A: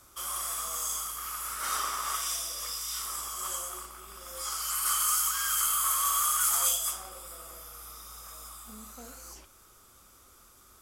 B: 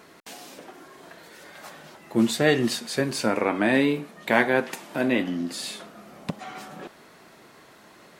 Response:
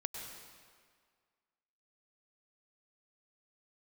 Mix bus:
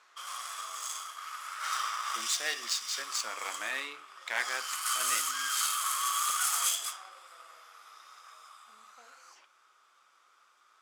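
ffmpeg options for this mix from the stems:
-filter_complex "[0:a]volume=1.33[s0];[1:a]lowpass=f=7000:t=q:w=3.4,highshelf=f=4500:g=7,volume=0.355[s1];[s0][s1]amix=inputs=2:normalize=0,adynamicsmooth=sensitivity=4.5:basefreq=2900,highpass=1200"

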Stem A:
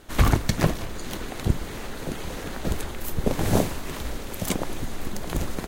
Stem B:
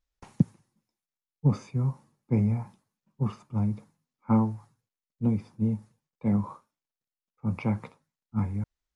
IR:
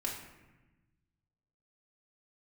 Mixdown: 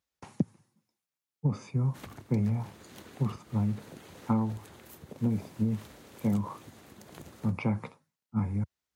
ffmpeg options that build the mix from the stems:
-filter_complex "[0:a]acompressor=threshold=0.0562:ratio=10,adelay=1850,volume=0.188[s0];[1:a]volume=1.26[s1];[s0][s1]amix=inputs=2:normalize=0,highpass=f=82:w=0.5412,highpass=f=82:w=1.3066,acompressor=threshold=0.0631:ratio=5"

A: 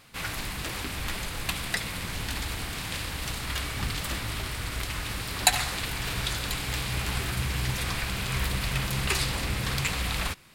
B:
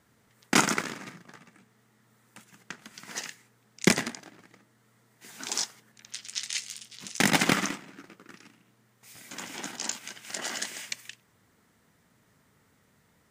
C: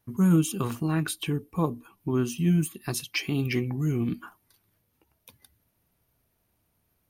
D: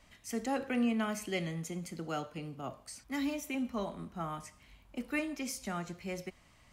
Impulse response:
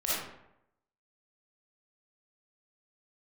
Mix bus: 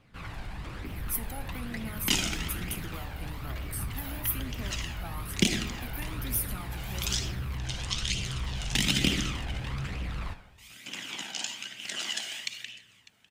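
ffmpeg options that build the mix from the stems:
-filter_complex "[0:a]lowpass=f=1100:p=1,asoftclip=type=tanh:threshold=0.0422,volume=0.944,asplit=2[s0][s1];[s1]volume=0.15[s2];[1:a]equalizer=f=3000:w=1.7:g=13,adelay=1550,volume=0.708,asplit=3[s3][s4][s5];[s4]volume=0.282[s6];[s5]volume=0.1[s7];[3:a]acompressor=threshold=0.0126:ratio=6,aexciter=amount=9.1:drive=9.8:freq=10000,adelay=850,volume=1.33[s8];[4:a]atrim=start_sample=2205[s9];[s2][s6]amix=inputs=2:normalize=0[s10];[s10][s9]afir=irnorm=-1:irlink=0[s11];[s7]aecho=0:1:600:1[s12];[s0][s3][s8][s11][s12]amix=inputs=5:normalize=0,acrossover=split=460|3000[s13][s14][s15];[s14]acompressor=threshold=0.0224:ratio=6[s16];[s13][s16][s15]amix=inputs=3:normalize=0,flanger=delay=0.3:depth=1.1:regen=43:speed=1.1:shape=triangular"

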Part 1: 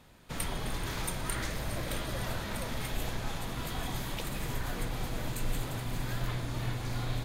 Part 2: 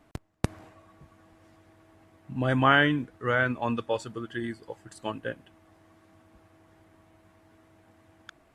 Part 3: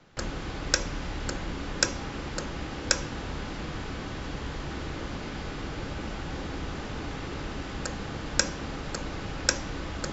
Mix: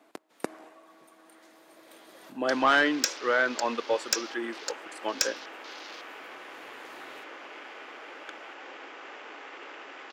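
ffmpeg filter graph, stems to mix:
-filter_complex "[0:a]volume=0.282[s0];[1:a]equalizer=f=630:w=0.4:g=2.5,volume=1,asplit=2[s1][s2];[2:a]highpass=450,afwtdn=0.00501,equalizer=f=5300:t=o:w=2.5:g=9,adelay=2300,volume=0.562[s3];[s2]apad=whole_len=319635[s4];[s0][s4]sidechaincompress=threshold=0.00708:ratio=6:attack=16:release=1160[s5];[s5][s1][s3]amix=inputs=3:normalize=0,highpass=f=290:w=0.5412,highpass=f=290:w=1.3066,asoftclip=type=tanh:threshold=0.211"

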